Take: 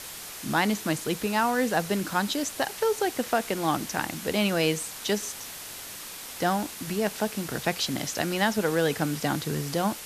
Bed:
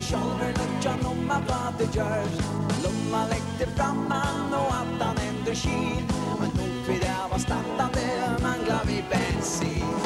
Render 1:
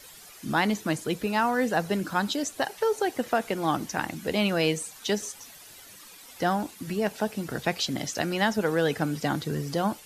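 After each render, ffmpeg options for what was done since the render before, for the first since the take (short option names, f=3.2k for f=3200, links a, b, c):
-af "afftdn=nr=12:nf=-40"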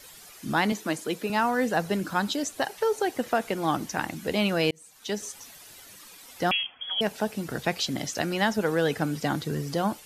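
-filter_complex "[0:a]asettb=1/sr,asplit=3[a][b][c];[a]atrim=end=0.724[d];[b]atrim=start=0.72:end=1.3,asetpts=PTS-STARTPTS,afade=t=in:d=0.004:c=qsin,afade=t=out:st=0.576:d=0.004:c=qsin,highpass=220[e];[c]atrim=start=1.296[f];[d][e]acrossfade=d=0.004:c1=hsin:c2=qsin[g];[g][f]acrossfade=d=0.004:c1=qsin:c2=hsin,asettb=1/sr,asplit=3[h][i][j];[h]atrim=end=6.514[k];[i]atrim=start=6.51:end=7.01,asetpts=PTS-STARTPTS,afade=t=in:d=0.004:c=qsin,afade=t=out:st=0.496:d=0.004:c=qsin,lowpass=f=3k:t=q:w=0.5098,lowpass=f=3k:t=q:w=0.6013,lowpass=f=3k:t=q:w=0.9,lowpass=f=3k:t=q:w=2.563,afreqshift=-3500[l];[j]atrim=start=7.006[m];[k][l]acrossfade=d=0.004:c1=hsin:c2=qsin[n];[n][m]acrossfade=d=0.004:c1=qsin:c2=hsin,asplit=2[o][p];[o]atrim=end=4.71,asetpts=PTS-STARTPTS,afade=t=out:st=4.706:d=0.004:c=hsin[q];[p]atrim=start=4.71,asetpts=PTS-STARTPTS,afade=t=in:d=0.65[r];[q][r]concat=n=2:v=0:a=1"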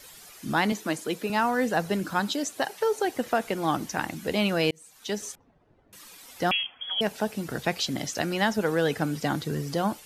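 -filter_complex "[0:a]asettb=1/sr,asplit=3[a][b][c];[a]atrim=end=2.194[d];[b]atrim=start=2.19:end=3.05,asetpts=PTS-STARTPTS,afade=t=in:d=0.004:c=qsin,afade=t=out:st=0.856:d=0.004:c=qsin,highpass=120[e];[c]atrim=start=3.046[f];[d][e]acrossfade=d=0.004:c1=hsin:c2=qsin[g];[g][f]acrossfade=d=0.004:c1=qsin:c2=hsin,asettb=1/sr,asplit=3[h][i][j];[h]atrim=end=5.354[k];[i]atrim=start=5.35:end=5.93,asetpts=PTS-STARTPTS,afade=t=in:d=0.004:c=qsin,afade=t=out:st=0.576:d=0.004:c=qsin,adynamicsmooth=sensitivity=1.5:basefreq=550[l];[j]atrim=start=5.926[m];[k][l]acrossfade=d=0.004:c1=hsin:c2=qsin[n];[n][m]acrossfade=d=0.004:c1=qsin:c2=hsin"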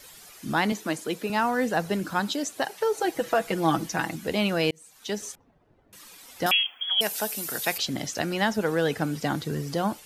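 -filter_complex "[0:a]asettb=1/sr,asplit=3[a][b][c];[a]atrim=end=2.944[d];[b]atrim=start=2.94:end=4.16,asetpts=PTS-STARTPTS,afade=t=in:d=0.004:c=qsin,afade=t=out:st=1.216:d=0.004:c=qsin,aecho=1:1:6.1:0.74,atrim=end_sample=53802[e];[c]atrim=start=4.156[f];[d][e]acrossfade=d=0.004:c1=hsin:c2=qsin[g];[g][f]acrossfade=d=0.004:c1=qsin:c2=hsin,asettb=1/sr,asplit=3[h][i][j];[h]atrim=end=6.464[k];[i]atrim=start=6.46:end=7.78,asetpts=PTS-STARTPTS,afade=t=in:d=0.004:c=qsin,afade=t=out:st=1.316:d=0.004:c=qsin,aemphasis=mode=production:type=riaa[l];[j]atrim=start=7.776[m];[k][l]acrossfade=d=0.004:c1=hsin:c2=qsin[n];[n][m]acrossfade=d=0.004:c1=qsin:c2=hsin"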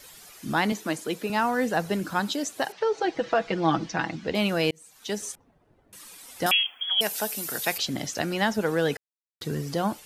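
-filter_complex "[0:a]asettb=1/sr,asplit=3[a][b][c];[a]atrim=end=2.724[d];[b]atrim=start=2.72:end=4.35,asetpts=PTS-STARTPTS,afade=t=in:d=0.004:c=qsin,afade=t=out:st=1.626:d=0.004:c=qsin,lowpass=f=5.4k:w=0.5412,lowpass=f=5.4k:w=1.3066[e];[c]atrim=start=4.346[f];[d][e]acrossfade=d=0.004:c1=hsin:c2=qsin[g];[g][f]acrossfade=d=0.004:c1=qsin:c2=hsin,asettb=1/sr,asplit=3[h][i][j];[h]atrim=end=5.104[k];[i]atrim=start=5.1:end=6.86,asetpts=PTS-STARTPTS,afade=t=in:d=0.004:c=qsin,afade=t=out:st=1.756:d=0.004:c=qsin,equalizer=f=9.3k:w=1.8:g=5.5[l];[j]atrim=start=6.856[m];[k][l]acrossfade=d=0.004:c1=hsin:c2=qsin[n];[n][m]acrossfade=d=0.004:c1=qsin:c2=hsin,asplit=3[o][p][q];[o]atrim=end=8.97,asetpts=PTS-STARTPTS,afade=t=out:st=8.966:d=0.004:c=hsin[r];[p]atrim=start=8.97:end=9.41,asetpts=PTS-STARTPTS,volume=0[s];[q]atrim=start=9.41,asetpts=PTS-STARTPTS,afade=t=in:d=0.004:c=hsin[t];[r][s][t]concat=n=3:v=0:a=1"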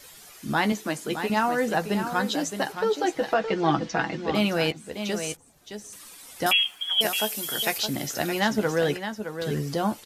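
-filter_complex "[0:a]asplit=2[a][b];[b]adelay=14,volume=-9.5dB[c];[a][c]amix=inputs=2:normalize=0,aecho=1:1:617:0.376"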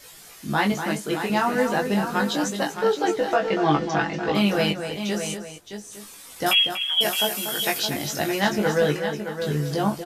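-filter_complex "[0:a]asplit=2[a][b];[b]adelay=20,volume=-3dB[c];[a][c]amix=inputs=2:normalize=0,asplit=2[d][e];[e]adelay=239.1,volume=-8dB,highshelf=f=4k:g=-5.38[f];[d][f]amix=inputs=2:normalize=0"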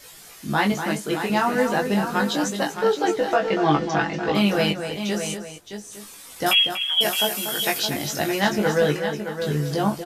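-af "volume=1dB"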